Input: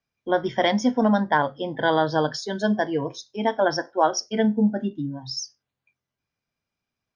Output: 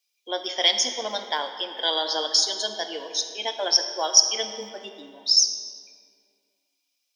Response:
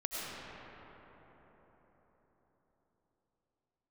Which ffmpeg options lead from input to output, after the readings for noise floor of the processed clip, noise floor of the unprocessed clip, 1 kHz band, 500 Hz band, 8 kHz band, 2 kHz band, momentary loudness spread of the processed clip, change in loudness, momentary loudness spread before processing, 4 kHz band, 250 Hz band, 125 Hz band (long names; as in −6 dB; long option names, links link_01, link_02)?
−77 dBFS, below −85 dBFS, −7.0 dB, −7.5 dB, can't be measured, −5.5 dB, 16 LU, +1.5 dB, 10 LU, +12.5 dB, −20.0 dB, below −25 dB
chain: -filter_complex "[0:a]highpass=frequency=370:width=0.5412,highpass=frequency=370:width=1.3066,aexciter=amount=11.2:drive=2.6:freq=2400,asplit=2[link_01][link_02];[1:a]atrim=start_sample=2205,asetrate=88200,aresample=44100[link_03];[link_02][link_03]afir=irnorm=-1:irlink=0,volume=-4.5dB[link_04];[link_01][link_04]amix=inputs=2:normalize=0,volume=-9.5dB"